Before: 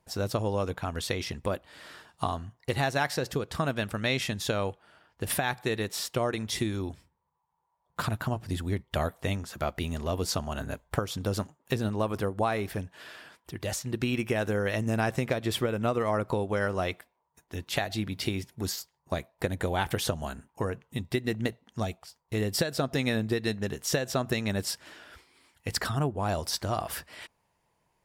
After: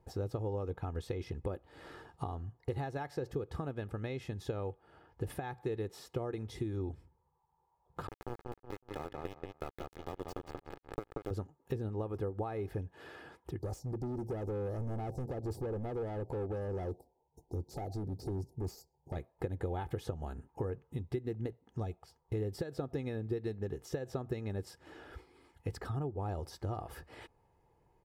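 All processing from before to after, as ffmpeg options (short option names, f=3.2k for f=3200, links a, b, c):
-filter_complex "[0:a]asettb=1/sr,asplit=3[a][b][c];[a]atrim=end=8.074[d];[b]atrim=start=8.07:end=11.31,asetpts=PTS-STARTPTS,afade=t=in:d=0.004:c=qsin,afade=t=out:st=3.236:d=0.004:c=qsin,highpass=220,aeval=exprs='val(0)*gte(abs(val(0)),0.0562)':c=same,asplit=2[e][f];[f]adelay=183,lowpass=f=3.3k:p=1,volume=-3.5dB,asplit=2[g][h];[h]adelay=183,lowpass=f=3.3k:p=1,volume=0.2,asplit=2[i][j];[j]adelay=183,lowpass=f=3.3k:p=1,volume=0.2[k];[e][g][i][k]amix=inputs=4:normalize=0,atrim=end_sample=142884[l];[c]atrim=start=11.306[m];[d][l]acrossfade=d=0.004:c1=hsin:c2=qsin[n];[n][m]acrossfade=d=0.004:c1=qsin:c2=hsin,asettb=1/sr,asplit=3[o][p][q];[o]atrim=end=13.594[r];[p]atrim=start=13.59:end=19.16,asetpts=PTS-STARTPTS,afade=t=in:d=0.004:c=qsin,afade=t=out:st=5.566:d=0.004:c=qsin,asuperstop=centerf=2000:order=12:qfactor=0.56,asoftclip=type=hard:threshold=-33dB[s];[q]atrim=start=19.156[t];[r][s]acrossfade=d=0.004:c1=hsin:c2=qsin[u];[u][t]acrossfade=d=0.004:c1=qsin:c2=hsin,acompressor=threshold=-45dB:ratio=2.5,tiltshelf=f=1.3k:g=9.5,aecho=1:1:2.4:0.49,volume=-3dB"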